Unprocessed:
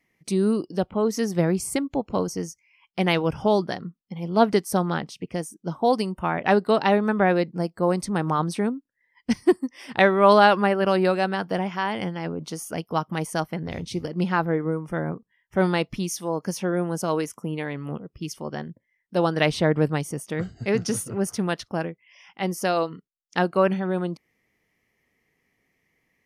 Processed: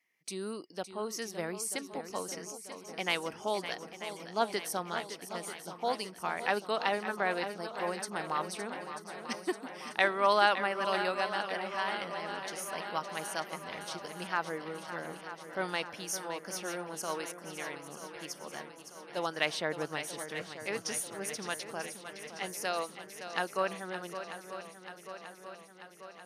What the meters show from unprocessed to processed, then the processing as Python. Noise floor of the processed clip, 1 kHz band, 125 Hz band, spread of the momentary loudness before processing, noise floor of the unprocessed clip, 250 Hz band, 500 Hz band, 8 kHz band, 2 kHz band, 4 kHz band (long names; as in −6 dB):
−52 dBFS, −8.5 dB, −21.0 dB, 12 LU, −74 dBFS, −18.0 dB, −12.5 dB, −3.5 dB, −5.5 dB, −4.0 dB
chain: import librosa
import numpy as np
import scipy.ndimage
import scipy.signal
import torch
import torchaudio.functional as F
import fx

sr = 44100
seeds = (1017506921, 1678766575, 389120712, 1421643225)

p1 = fx.highpass(x, sr, hz=1300.0, slope=6)
p2 = p1 + fx.echo_swing(p1, sr, ms=938, ratio=1.5, feedback_pct=61, wet_db=-10.5, dry=0)
y = p2 * 10.0 ** (-4.5 / 20.0)